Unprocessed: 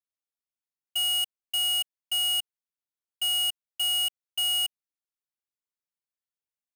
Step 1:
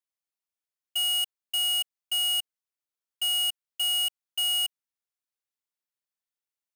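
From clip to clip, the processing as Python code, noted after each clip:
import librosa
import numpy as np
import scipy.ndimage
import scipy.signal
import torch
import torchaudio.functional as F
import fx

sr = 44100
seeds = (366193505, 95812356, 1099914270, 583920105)

y = fx.low_shelf(x, sr, hz=310.0, db=-8.0)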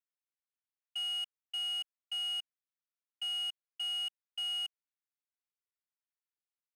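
y = fx.bandpass_q(x, sr, hz=1700.0, q=0.85)
y = F.gain(torch.from_numpy(y), -6.0).numpy()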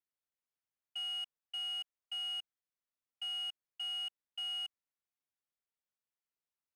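y = fx.high_shelf(x, sr, hz=3300.0, db=-7.5)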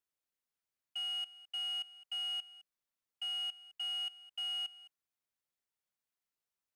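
y = x + 10.0 ** (-18.0 / 20.0) * np.pad(x, (int(211 * sr / 1000.0), 0))[:len(x)]
y = F.gain(torch.from_numpy(y), 1.0).numpy()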